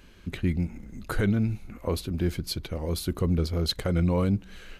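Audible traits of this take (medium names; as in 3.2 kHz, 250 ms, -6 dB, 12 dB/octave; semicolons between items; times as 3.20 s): noise floor -50 dBFS; spectral tilt -6.5 dB/octave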